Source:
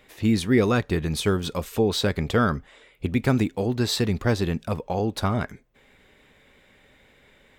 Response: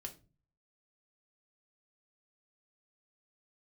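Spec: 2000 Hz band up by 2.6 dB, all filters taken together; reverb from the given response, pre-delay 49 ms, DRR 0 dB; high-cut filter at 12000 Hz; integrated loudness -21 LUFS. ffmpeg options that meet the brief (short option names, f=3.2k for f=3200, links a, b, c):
-filter_complex "[0:a]lowpass=12k,equalizer=f=2k:t=o:g=3.5,asplit=2[a][b];[1:a]atrim=start_sample=2205,adelay=49[c];[b][c]afir=irnorm=-1:irlink=0,volume=3.5dB[d];[a][d]amix=inputs=2:normalize=0,volume=-0.5dB"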